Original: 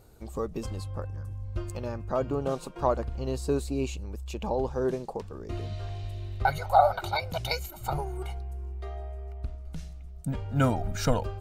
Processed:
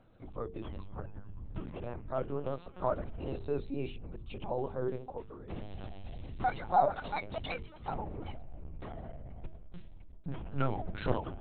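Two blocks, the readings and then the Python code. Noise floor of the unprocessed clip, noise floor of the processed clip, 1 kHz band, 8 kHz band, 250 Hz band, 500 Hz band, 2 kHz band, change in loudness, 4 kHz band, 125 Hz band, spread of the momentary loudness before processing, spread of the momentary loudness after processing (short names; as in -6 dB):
-43 dBFS, -51 dBFS, -5.5 dB, under -35 dB, -7.5 dB, -6.5 dB, -7.5 dB, -6.5 dB, -11.0 dB, -9.0 dB, 13 LU, 14 LU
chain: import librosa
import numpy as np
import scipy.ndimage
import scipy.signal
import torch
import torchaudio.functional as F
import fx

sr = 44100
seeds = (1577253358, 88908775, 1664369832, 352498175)

y = fx.vibrato(x, sr, rate_hz=8.0, depth_cents=74.0)
y = fx.lpc_vocoder(y, sr, seeds[0], excitation='pitch_kept', order=10)
y = fx.hum_notches(y, sr, base_hz=50, count=9)
y = y * 10.0 ** (-6.0 / 20.0)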